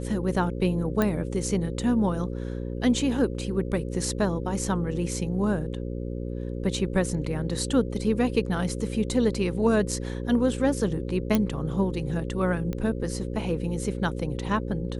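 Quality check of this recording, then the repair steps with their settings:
buzz 60 Hz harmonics 9 -32 dBFS
1.02 s: pop -11 dBFS
11.35 s: pop
12.73 s: pop -19 dBFS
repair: de-click; de-hum 60 Hz, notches 9

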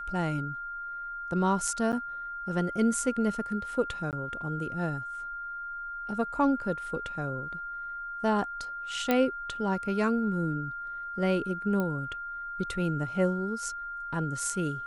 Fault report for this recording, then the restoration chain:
whine 1.4 kHz -35 dBFS
1.92–1.93 s: dropout 8.4 ms
4.11–4.13 s: dropout 18 ms
9.11 s: pop -12 dBFS
11.80 s: pop -19 dBFS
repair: de-click; band-stop 1.4 kHz, Q 30; interpolate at 1.92 s, 8.4 ms; interpolate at 4.11 s, 18 ms

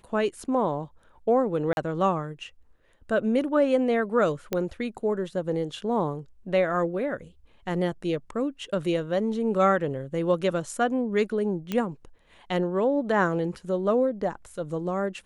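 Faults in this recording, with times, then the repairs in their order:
1.73–1.77 s: dropout 41 ms
4.53 s: pop -13 dBFS
11.72 s: pop -15 dBFS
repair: de-click; interpolate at 1.73 s, 41 ms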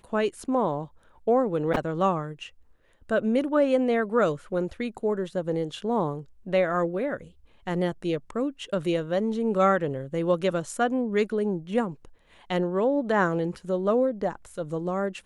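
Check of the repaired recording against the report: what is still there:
nothing left

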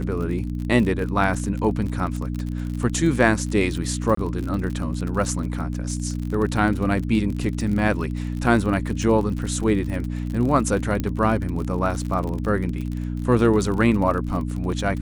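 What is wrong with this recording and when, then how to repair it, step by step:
crackle 41 per s -28 dBFS
hum 60 Hz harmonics 5 -27 dBFS
4.15–4.17 s: dropout 24 ms
11.00 s: pop -12 dBFS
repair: de-click; de-hum 60 Hz, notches 5; interpolate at 4.15 s, 24 ms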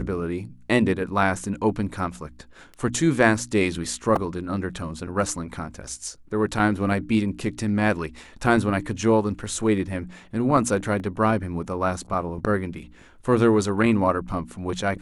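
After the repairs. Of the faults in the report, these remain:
11.00 s: pop

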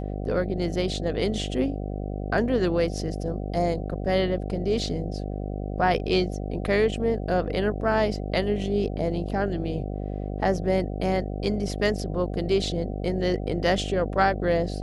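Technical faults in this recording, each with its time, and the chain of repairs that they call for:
buzz 50 Hz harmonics 15 -31 dBFS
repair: de-hum 50 Hz, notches 15

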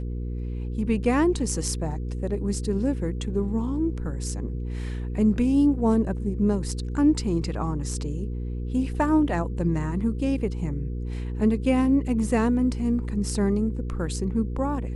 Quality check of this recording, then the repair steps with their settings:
hum 60 Hz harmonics 8 -30 dBFS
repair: de-hum 60 Hz, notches 8

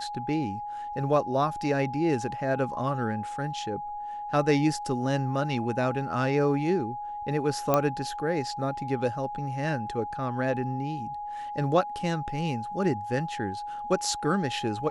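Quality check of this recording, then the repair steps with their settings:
whine 830 Hz -33 dBFS
7.74 s: pop -9 dBFS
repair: de-click; band-stop 830 Hz, Q 30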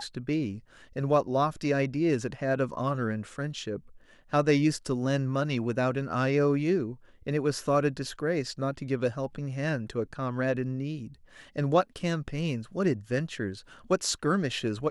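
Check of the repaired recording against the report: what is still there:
nothing left

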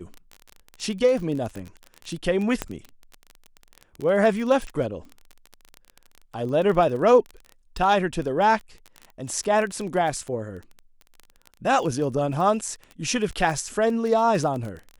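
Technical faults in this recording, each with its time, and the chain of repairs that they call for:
crackle 24 per s -29 dBFS
2.62 s: pop -11 dBFS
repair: de-click

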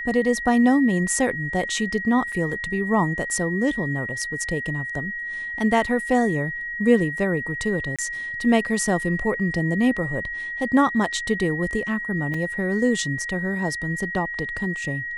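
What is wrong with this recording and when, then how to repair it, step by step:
whine 1.9 kHz -28 dBFS
2.32–2.33 s: dropout 5 ms
7.96–7.99 s: dropout 26 ms
12.34 s: dropout 3.8 ms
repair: band-stop 1.9 kHz, Q 30; interpolate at 2.32 s, 5 ms; interpolate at 7.96 s, 26 ms; interpolate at 12.34 s, 3.8 ms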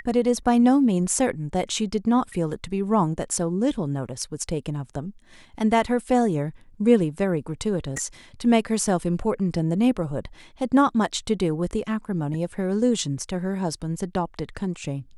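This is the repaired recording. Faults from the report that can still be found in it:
nothing left

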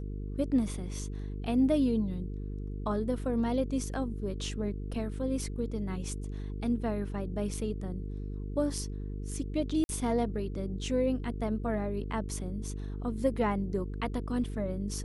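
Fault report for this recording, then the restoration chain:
buzz 50 Hz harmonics 9 -37 dBFS
9.84–9.89 s: dropout 51 ms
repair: de-hum 50 Hz, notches 9; interpolate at 9.84 s, 51 ms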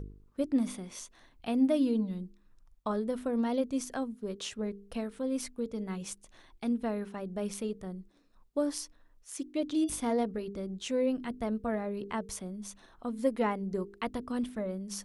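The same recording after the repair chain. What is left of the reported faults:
nothing left

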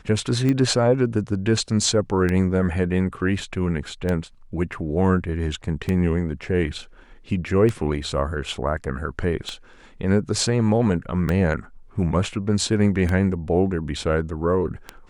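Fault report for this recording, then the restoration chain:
tick 33 1/3 rpm -12 dBFS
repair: de-click

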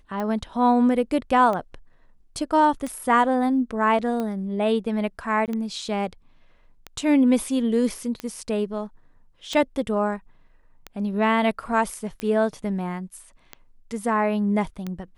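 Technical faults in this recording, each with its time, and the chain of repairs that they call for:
tick 45 rpm -17 dBFS
5.46–5.48 s: dropout 18 ms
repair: de-click; interpolate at 5.46 s, 18 ms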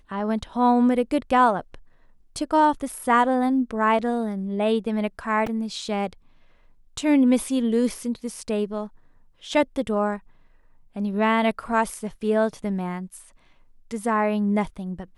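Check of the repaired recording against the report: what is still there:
nothing left

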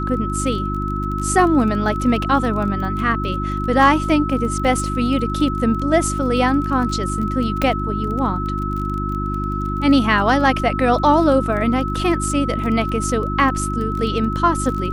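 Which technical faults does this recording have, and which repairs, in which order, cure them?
crackle 24 per s -26 dBFS
hum 50 Hz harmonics 7 -24 dBFS
whine 1.3 kHz -25 dBFS
7.62 s: pop -6 dBFS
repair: de-click; band-stop 1.3 kHz, Q 30; de-hum 50 Hz, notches 7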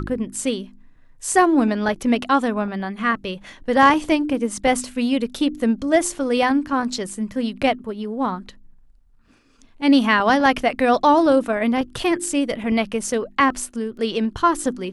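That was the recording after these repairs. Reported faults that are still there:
nothing left

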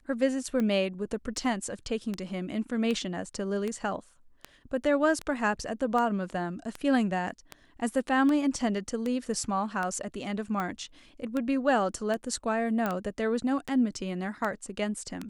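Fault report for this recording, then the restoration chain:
tick 78 rpm -19 dBFS
12.86 s: pop -16 dBFS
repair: de-click

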